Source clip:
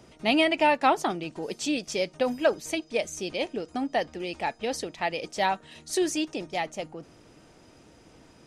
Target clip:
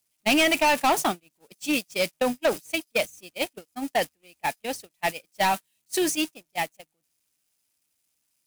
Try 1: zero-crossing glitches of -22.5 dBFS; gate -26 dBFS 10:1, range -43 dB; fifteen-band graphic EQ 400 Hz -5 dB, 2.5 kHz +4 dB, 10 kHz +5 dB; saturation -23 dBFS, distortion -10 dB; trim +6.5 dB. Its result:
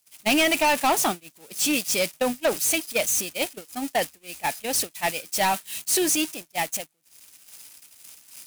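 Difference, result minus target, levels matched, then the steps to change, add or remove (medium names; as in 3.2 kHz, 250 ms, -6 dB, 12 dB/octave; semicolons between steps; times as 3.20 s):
zero-crossing glitches: distortion +6 dB
change: zero-crossing glitches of -29 dBFS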